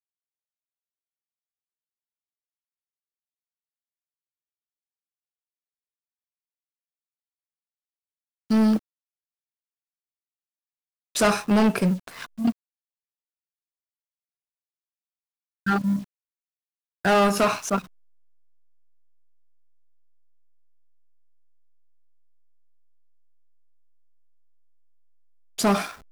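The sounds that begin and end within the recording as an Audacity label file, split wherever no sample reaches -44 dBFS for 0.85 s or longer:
8.500000	8.790000	sound
11.150000	12.520000	sound
15.660000	16.040000	sound
17.050000	17.860000	sound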